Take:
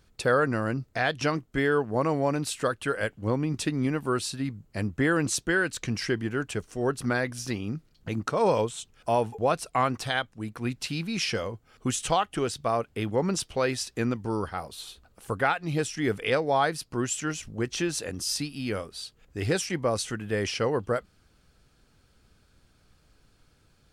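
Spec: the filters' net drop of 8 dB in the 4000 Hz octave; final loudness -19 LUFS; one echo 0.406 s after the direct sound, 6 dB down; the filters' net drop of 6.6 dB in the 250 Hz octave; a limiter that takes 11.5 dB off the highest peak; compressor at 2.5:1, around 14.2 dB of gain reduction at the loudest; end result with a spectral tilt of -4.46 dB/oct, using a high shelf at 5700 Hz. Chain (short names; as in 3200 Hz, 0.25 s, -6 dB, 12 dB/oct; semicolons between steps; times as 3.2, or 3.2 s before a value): bell 250 Hz -9 dB; bell 4000 Hz -7 dB; high shelf 5700 Hz -9 dB; compressor 2.5:1, threshold -43 dBFS; limiter -36.5 dBFS; echo 0.406 s -6 dB; gain +27 dB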